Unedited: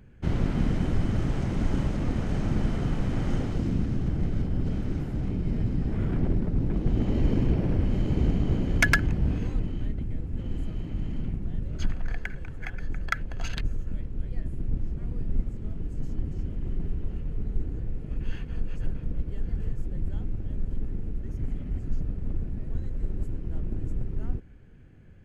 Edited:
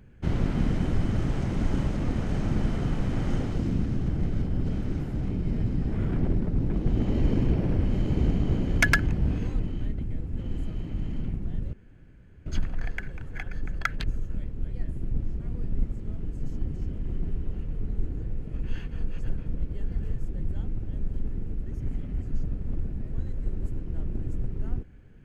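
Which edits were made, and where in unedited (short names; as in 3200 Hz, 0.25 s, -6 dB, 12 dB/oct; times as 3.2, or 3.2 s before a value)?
11.73 insert room tone 0.73 s
13.26–13.56 cut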